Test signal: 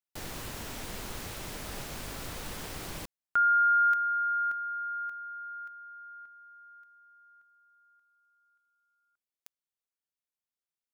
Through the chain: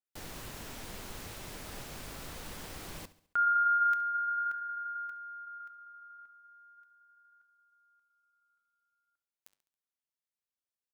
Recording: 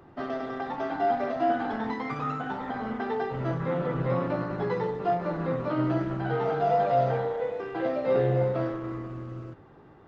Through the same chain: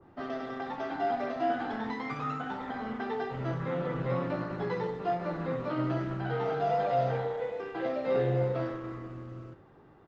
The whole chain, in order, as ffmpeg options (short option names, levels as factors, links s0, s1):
-af "flanger=delay=3.5:depth=7.8:regen=-86:speed=0.38:shape=sinusoidal,aecho=1:1:69|138|207|276:0.126|0.0617|0.0302|0.0148,adynamicequalizer=threshold=0.00708:dfrequency=1600:dqfactor=0.7:tfrequency=1600:tqfactor=0.7:attack=5:release=100:ratio=0.375:range=2:mode=boostabove:tftype=highshelf"